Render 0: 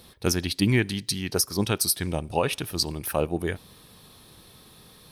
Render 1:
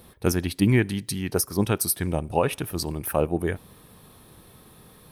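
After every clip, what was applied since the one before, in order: peaking EQ 4.5 kHz -10.5 dB 1.5 oct; trim +2.5 dB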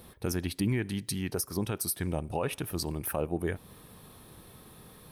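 in parallel at +1.5 dB: compression, threshold -32 dBFS, peak gain reduction 16.5 dB; on the sum: peak limiter -11.5 dBFS, peak gain reduction 5.5 dB; trim -8 dB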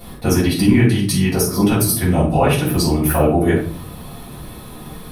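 simulated room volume 410 m³, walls furnished, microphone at 6.9 m; trim +5.5 dB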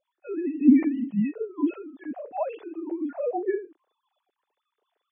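formants replaced by sine waves; spectral contrast expander 1.5:1; trim -8 dB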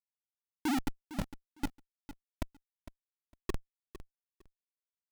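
fade-in on the opening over 0.76 s; Schmitt trigger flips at -18 dBFS; feedback delay 456 ms, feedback 18%, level -14 dB; trim -1.5 dB

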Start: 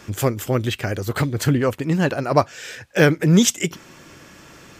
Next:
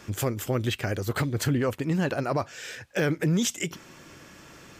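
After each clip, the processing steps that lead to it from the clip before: peak limiter -12.5 dBFS, peak gain reduction 10.5 dB; trim -4 dB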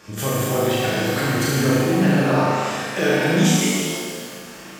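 bass shelf 94 Hz -10.5 dB; on a send: flutter echo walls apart 6.3 m, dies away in 0.92 s; on the sum: pitch-shifted reverb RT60 1.8 s, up +7 st, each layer -8 dB, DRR -4 dB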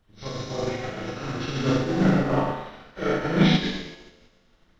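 knee-point frequency compression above 1 kHz 1.5:1; added noise brown -34 dBFS; upward expansion 2.5:1, over -32 dBFS

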